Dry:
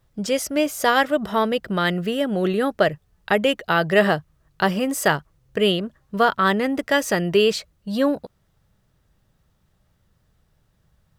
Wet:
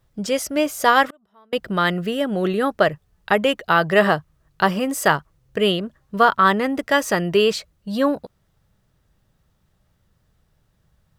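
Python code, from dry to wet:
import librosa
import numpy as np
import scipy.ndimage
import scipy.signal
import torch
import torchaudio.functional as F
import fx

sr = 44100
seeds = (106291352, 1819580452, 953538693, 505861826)

y = fx.dynamic_eq(x, sr, hz=1100.0, q=1.8, threshold_db=-32.0, ratio=4.0, max_db=6)
y = fx.gate_flip(y, sr, shuts_db=-25.0, range_db=-35, at=(1.06, 1.53))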